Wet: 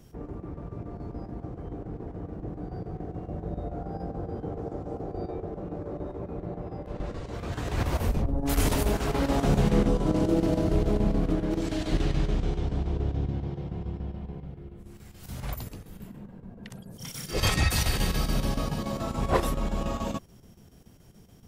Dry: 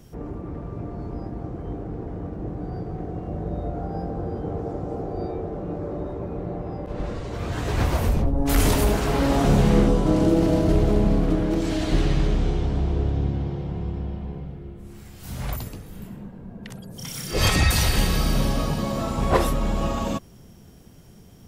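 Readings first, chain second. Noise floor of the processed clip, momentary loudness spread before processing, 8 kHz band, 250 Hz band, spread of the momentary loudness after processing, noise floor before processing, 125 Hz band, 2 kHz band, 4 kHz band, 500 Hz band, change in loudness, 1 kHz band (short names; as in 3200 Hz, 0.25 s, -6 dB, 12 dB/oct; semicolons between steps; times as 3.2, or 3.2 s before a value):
-52 dBFS, 16 LU, -5.5 dB, -5.5 dB, 16 LU, -47 dBFS, -5.5 dB, -5.0 dB, -5.5 dB, -5.0 dB, -5.5 dB, -5.0 dB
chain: chopper 7 Hz, depth 60%, duty 80%; gain -4.5 dB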